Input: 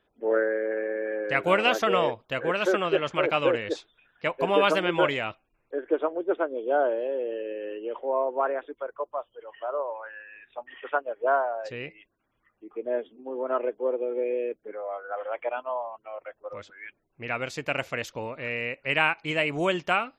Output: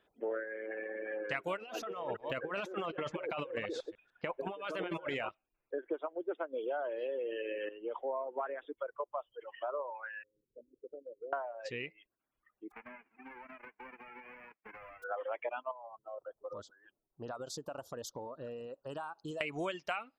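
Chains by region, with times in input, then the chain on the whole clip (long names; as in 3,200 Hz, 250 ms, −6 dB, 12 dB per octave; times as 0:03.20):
0:01.57–0:05.29: delay that plays each chunk backwards 149 ms, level −13 dB + high-shelf EQ 2,200 Hz −8.5 dB + compressor whose output falls as the input rises −31 dBFS
0:06.53–0:07.69: spectral tilt +1.5 dB per octave + envelope flattener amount 50%
0:10.23–0:11.33: Chebyshev low-pass filter 530 Hz, order 6 + downward compressor 3 to 1, threshold −42 dBFS
0:12.70–0:15.02: spectral envelope flattened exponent 0.1 + elliptic low-pass filter 2,400 Hz + downward compressor 20 to 1, threshold −43 dBFS
0:15.71–0:19.41: Butterworth band-reject 2,200 Hz, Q 0.78 + downward compressor, threshold −35 dBFS
whole clip: reverb reduction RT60 1.7 s; low-shelf EQ 170 Hz −6.5 dB; downward compressor 6 to 1, threshold −33 dBFS; level −1 dB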